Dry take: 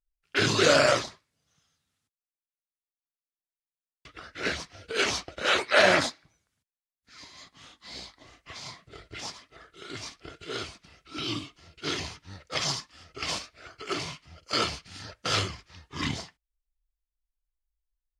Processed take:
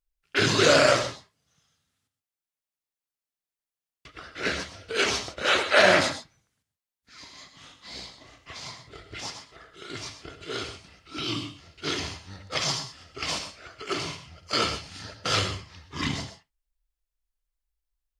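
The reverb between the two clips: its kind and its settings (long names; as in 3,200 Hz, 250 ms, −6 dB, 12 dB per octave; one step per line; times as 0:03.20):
reverb whose tail is shaped and stops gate 150 ms rising, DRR 9 dB
level +1.5 dB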